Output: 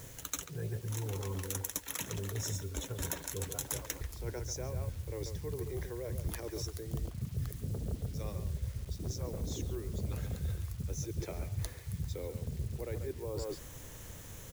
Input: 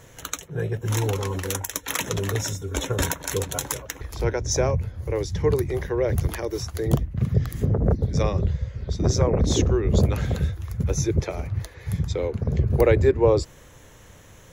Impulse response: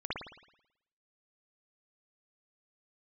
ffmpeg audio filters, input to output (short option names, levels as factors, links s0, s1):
-filter_complex "[0:a]asplit=2[s0][s1];[s1]adelay=140,highpass=300,lowpass=3400,asoftclip=type=hard:threshold=0.211,volume=0.398[s2];[s0][s2]amix=inputs=2:normalize=0,areverse,acompressor=threshold=0.02:ratio=12,areverse,lowshelf=f=330:g=7.5,acrusher=bits=8:mix=0:aa=0.000001,highshelf=f=4700:g=10.5,volume=0.501"